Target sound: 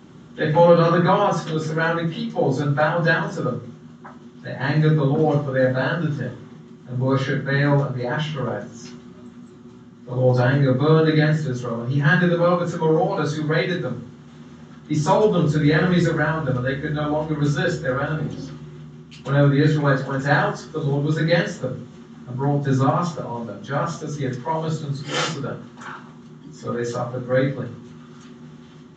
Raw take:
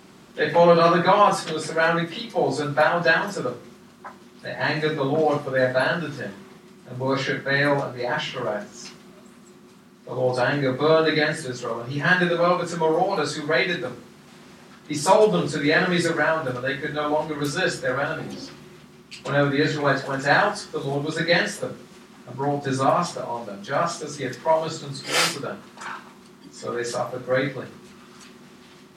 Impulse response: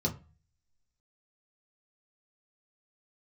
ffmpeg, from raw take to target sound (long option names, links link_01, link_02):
-filter_complex "[0:a]asettb=1/sr,asplit=3[link_01][link_02][link_03];[link_01]atrim=end=8.814[link_04];[link_02]atrim=start=8.81:end=10.73,asetpts=PTS-STARTPTS,afade=type=in:duration=0.004:curve=qsin,afade=type=out:start_time=1.916:duration=0.004:curve=qsin,asplit=2[link_05][link_06];[link_06]adelay=16,volume=-6.5dB[link_07];[link_05][link_07]amix=inputs=2:normalize=0,atrim=end_sample=84672[link_08];[link_03]atrim=start=10.726[link_09];[link_04][link_08]acrossfade=duration=0.004:curve1=hsin:curve2=qsin[link_10];[link_10][link_09]acrossfade=duration=0.004:curve1=qsin:curve2=hsin,asplit=2[link_11][link_12];[1:a]atrim=start_sample=2205,lowshelf=frequency=500:gain=3[link_13];[link_12][link_13]afir=irnorm=-1:irlink=0,volume=-9dB[link_14];[link_11][link_14]amix=inputs=2:normalize=0,aresample=16000,aresample=44100,volume=-2dB"